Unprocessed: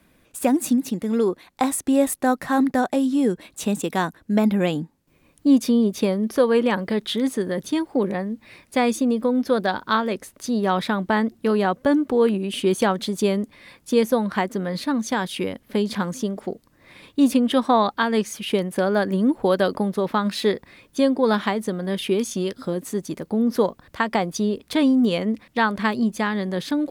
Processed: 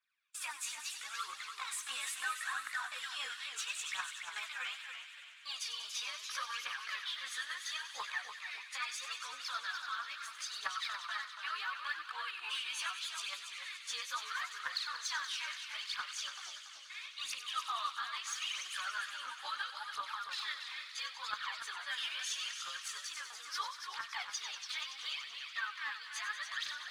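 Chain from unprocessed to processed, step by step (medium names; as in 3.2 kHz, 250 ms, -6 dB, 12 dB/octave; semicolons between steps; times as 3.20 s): short-time spectra conjugated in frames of 38 ms; low-pass 5.6 kHz 12 dB/octave; band-stop 2 kHz, Q 20; gate with hold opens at -44 dBFS; Chebyshev high-pass 1.2 kHz, order 4; compression 3:1, threshold -42 dBFS, peak gain reduction 16 dB; peak limiter -35 dBFS, peak gain reduction 9.5 dB; phaser 0.75 Hz, delay 4.3 ms, feedback 69%; feedback echo behind a high-pass 95 ms, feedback 84%, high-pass 1.9 kHz, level -10.5 dB; modulated delay 288 ms, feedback 33%, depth 153 cents, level -8 dB; trim +2.5 dB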